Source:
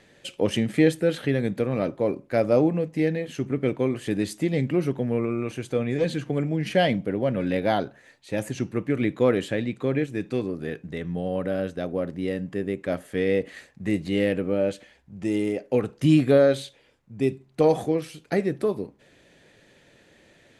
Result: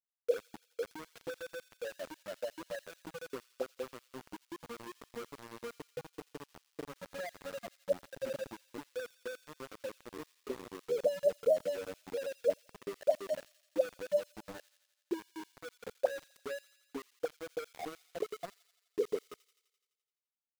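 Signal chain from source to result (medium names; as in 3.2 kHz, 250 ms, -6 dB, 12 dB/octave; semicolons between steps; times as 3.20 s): spectral contrast enhancement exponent 3.5; high-pass 67 Hz 24 dB/octave; granulator 260 ms, grains 8.3 per s, spray 528 ms; in parallel at -6 dB: saturation -20.5 dBFS, distortion -14 dB; on the sum: auto-wah 270–2300 Hz, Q 8.3, up, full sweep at -17.5 dBFS; small samples zeroed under -48 dBFS; on a send: feedback echo behind a high-pass 85 ms, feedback 68%, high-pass 3.4 kHz, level -11.5 dB; on the sum: trim +7.5 dB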